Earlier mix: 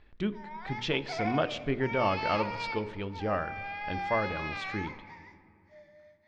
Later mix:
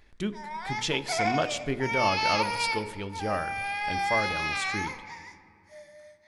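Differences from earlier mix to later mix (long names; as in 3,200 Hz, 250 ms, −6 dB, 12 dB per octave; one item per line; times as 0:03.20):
background +6.0 dB
master: remove Bessel low-pass filter 3,100 Hz, order 4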